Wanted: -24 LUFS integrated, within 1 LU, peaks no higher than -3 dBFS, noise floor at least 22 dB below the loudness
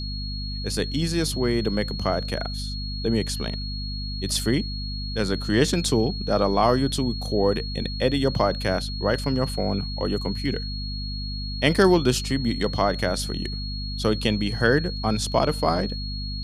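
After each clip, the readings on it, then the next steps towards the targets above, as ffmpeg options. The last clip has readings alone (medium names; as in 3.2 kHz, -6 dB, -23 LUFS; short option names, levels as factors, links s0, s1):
hum 50 Hz; highest harmonic 250 Hz; hum level -29 dBFS; steady tone 4.3 kHz; tone level -34 dBFS; loudness -24.5 LUFS; peak level -5.0 dBFS; loudness target -24.0 LUFS
-> -af "bandreject=f=50:t=h:w=4,bandreject=f=100:t=h:w=4,bandreject=f=150:t=h:w=4,bandreject=f=200:t=h:w=4,bandreject=f=250:t=h:w=4"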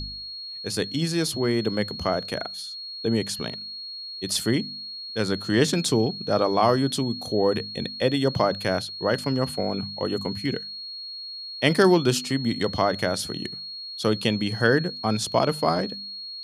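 hum not found; steady tone 4.3 kHz; tone level -34 dBFS
-> -af "bandreject=f=4300:w=30"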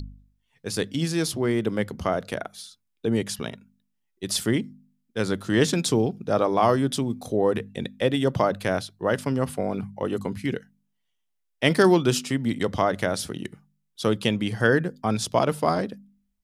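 steady tone not found; loudness -25.0 LUFS; peak level -5.0 dBFS; loudness target -24.0 LUFS
-> -af "volume=1.12"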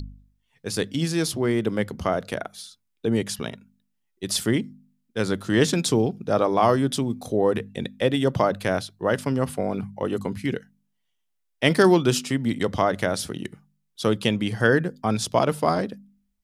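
loudness -24.0 LUFS; peak level -4.0 dBFS; noise floor -74 dBFS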